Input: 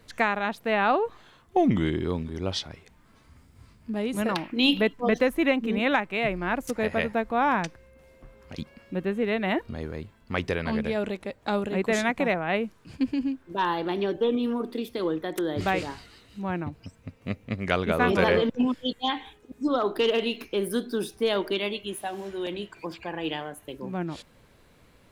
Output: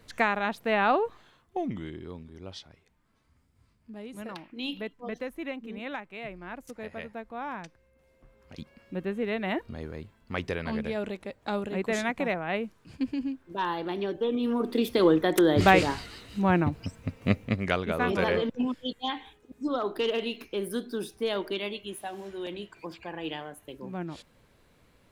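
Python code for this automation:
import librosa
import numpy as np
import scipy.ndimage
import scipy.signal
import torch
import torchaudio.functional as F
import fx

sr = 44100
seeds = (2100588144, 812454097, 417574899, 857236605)

y = fx.gain(x, sr, db=fx.line((0.99, -1.0), (1.82, -13.0), (7.65, -13.0), (8.96, -4.0), (14.29, -4.0), (14.88, 7.0), (17.38, 7.0), (17.82, -4.5)))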